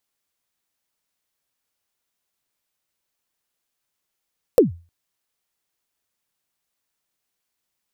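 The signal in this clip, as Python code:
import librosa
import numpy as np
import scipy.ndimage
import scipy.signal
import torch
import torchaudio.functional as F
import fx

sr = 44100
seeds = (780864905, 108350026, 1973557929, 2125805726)

y = fx.drum_kick(sr, seeds[0], length_s=0.31, level_db=-5.0, start_hz=550.0, end_hz=85.0, sweep_ms=137.0, decay_s=0.33, click=True)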